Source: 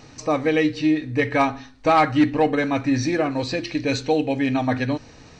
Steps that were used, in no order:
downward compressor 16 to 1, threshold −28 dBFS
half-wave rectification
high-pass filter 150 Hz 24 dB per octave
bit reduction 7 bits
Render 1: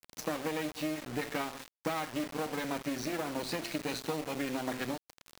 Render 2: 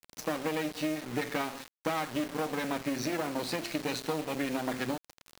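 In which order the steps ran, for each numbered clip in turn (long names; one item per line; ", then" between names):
half-wave rectification, then downward compressor, then high-pass filter, then bit reduction
half-wave rectification, then high-pass filter, then downward compressor, then bit reduction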